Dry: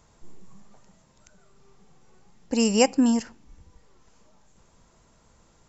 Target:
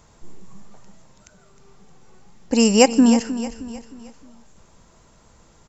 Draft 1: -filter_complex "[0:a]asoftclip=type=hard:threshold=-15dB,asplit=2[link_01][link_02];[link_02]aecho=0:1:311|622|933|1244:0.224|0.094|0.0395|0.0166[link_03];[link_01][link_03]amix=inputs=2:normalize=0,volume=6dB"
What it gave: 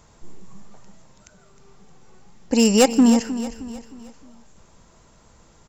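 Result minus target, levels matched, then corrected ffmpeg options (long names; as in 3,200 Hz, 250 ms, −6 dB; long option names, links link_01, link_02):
hard clipping: distortion +26 dB
-filter_complex "[0:a]asoftclip=type=hard:threshold=-8dB,asplit=2[link_01][link_02];[link_02]aecho=0:1:311|622|933|1244:0.224|0.094|0.0395|0.0166[link_03];[link_01][link_03]amix=inputs=2:normalize=0,volume=6dB"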